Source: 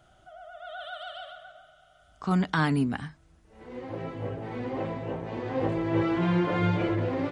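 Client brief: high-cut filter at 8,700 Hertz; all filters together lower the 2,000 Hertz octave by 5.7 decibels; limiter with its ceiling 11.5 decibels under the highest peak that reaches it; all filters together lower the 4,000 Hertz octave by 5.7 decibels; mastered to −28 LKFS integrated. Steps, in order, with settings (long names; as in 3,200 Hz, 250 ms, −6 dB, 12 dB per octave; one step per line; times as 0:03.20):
low-pass filter 8,700 Hz
parametric band 2,000 Hz −7 dB
parametric band 4,000 Hz −4.5 dB
level +7.5 dB
brickwall limiter −18 dBFS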